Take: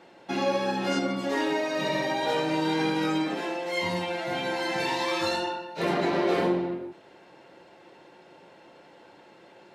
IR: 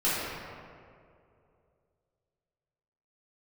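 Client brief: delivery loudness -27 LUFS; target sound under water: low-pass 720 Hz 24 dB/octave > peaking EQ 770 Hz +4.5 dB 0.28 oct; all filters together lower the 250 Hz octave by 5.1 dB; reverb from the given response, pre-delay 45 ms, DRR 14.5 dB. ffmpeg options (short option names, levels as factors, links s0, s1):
-filter_complex "[0:a]equalizer=f=250:t=o:g=-8,asplit=2[s0][s1];[1:a]atrim=start_sample=2205,adelay=45[s2];[s1][s2]afir=irnorm=-1:irlink=0,volume=0.0447[s3];[s0][s3]amix=inputs=2:normalize=0,lowpass=f=720:w=0.5412,lowpass=f=720:w=1.3066,equalizer=f=770:t=o:w=0.28:g=4.5,volume=1.78"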